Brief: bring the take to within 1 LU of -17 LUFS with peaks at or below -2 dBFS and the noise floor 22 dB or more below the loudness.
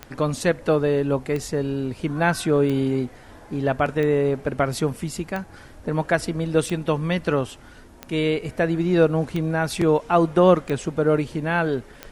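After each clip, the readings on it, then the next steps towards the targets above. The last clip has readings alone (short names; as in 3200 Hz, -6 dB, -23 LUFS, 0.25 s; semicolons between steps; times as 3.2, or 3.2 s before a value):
clicks 10; loudness -22.5 LUFS; peak -4.0 dBFS; loudness target -17.0 LUFS
-> de-click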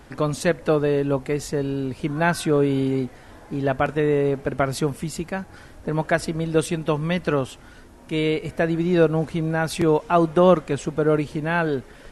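clicks 0; loudness -22.5 LUFS; peak -4.0 dBFS; loudness target -17.0 LUFS
-> gain +5.5 dB; limiter -2 dBFS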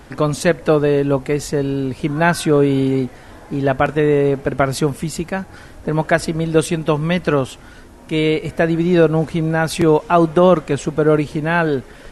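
loudness -17.5 LUFS; peak -2.0 dBFS; noise floor -40 dBFS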